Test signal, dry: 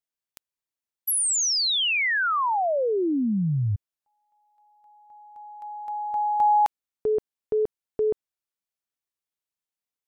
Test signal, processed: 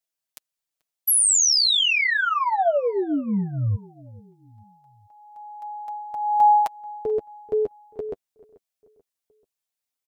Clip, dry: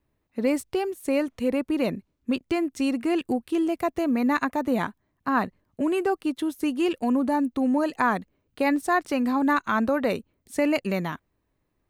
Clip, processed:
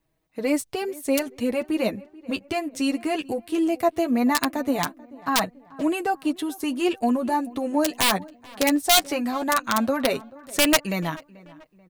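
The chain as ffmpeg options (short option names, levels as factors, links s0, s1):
-filter_complex "[0:a]equalizer=f=670:t=o:w=0.45:g=5,aeval=exprs='(mod(4.22*val(0)+1,2)-1)/4.22':c=same,flanger=delay=6.2:depth=4.2:regen=10:speed=0.18:shape=sinusoidal,highshelf=f=2500:g=7,asplit=2[s0][s1];[s1]adelay=436,lowpass=f=2000:p=1,volume=0.0891,asplit=2[s2][s3];[s3]adelay=436,lowpass=f=2000:p=1,volume=0.47,asplit=2[s4][s5];[s5]adelay=436,lowpass=f=2000:p=1,volume=0.47[s6];[s2][s4][s6]amix=inputs=3:normalize=0[s7];[s0][s7]amix=inputs=2:normalize=0,volume=1.33"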